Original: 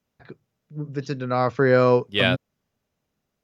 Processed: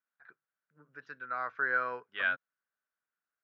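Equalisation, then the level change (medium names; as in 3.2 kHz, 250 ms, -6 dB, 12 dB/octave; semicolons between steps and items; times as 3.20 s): band-pass filter 1.5 kHz, Q 5.6; distance through air 55 m; 0.0 dB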